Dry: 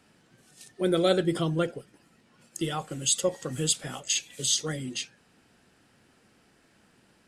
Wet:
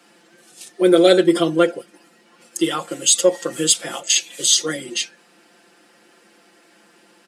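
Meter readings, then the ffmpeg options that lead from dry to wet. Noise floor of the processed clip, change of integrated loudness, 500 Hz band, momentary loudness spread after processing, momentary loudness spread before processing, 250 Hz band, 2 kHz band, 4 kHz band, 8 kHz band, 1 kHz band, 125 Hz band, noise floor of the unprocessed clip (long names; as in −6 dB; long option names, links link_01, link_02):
−55 dBFS, +10.5 dB, +11.5 dB, 12 LU, 10 LU, +11.0 dB, +10.5 dB, +10.0 dB, +10.0 dB, +9.0 dB, −1.0 dB, −64 dBFS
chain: -af "highpass=frequency=240:width=0.5412,highpass=frequency=240:width=1.3066,aecho=1:1:5.8:0.9,acontrast=36,volume=2.5dB"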